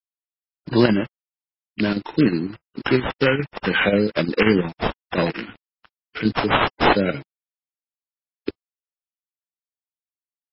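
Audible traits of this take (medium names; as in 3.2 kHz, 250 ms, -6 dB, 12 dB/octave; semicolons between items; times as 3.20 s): aliases and images of a low sample rate 4.5 kHz, jitter 20%; chopped level 5.6 Hz, depth 60%, duty 80%; a quantiser's noise floor 8-bit, dither none; MP3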